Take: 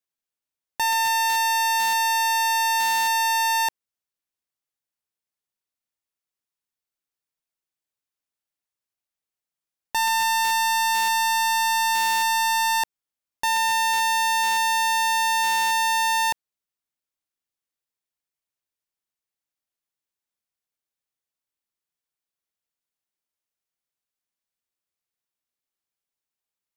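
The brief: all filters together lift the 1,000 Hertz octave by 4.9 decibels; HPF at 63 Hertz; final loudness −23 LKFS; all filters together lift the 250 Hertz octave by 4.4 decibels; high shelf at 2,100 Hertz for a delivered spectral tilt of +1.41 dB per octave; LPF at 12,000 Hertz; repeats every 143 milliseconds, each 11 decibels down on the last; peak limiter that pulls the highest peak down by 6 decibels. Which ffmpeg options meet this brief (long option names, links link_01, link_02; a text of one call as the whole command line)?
ffmpeg -i in.wav -af "highpass=63,lowpass=12000,equalizer=frequency=250:width_type=o:gain=6,equalizer=frequency=1000:width_type=o:gain=4.5,highshelf=frequency=2100:gain=3.5,alimiter=limit=-17dB:level=0:latency=1,aecho=1:1:143|286|429:0.282|0.0789|0.0221,volume=1dB" out.wav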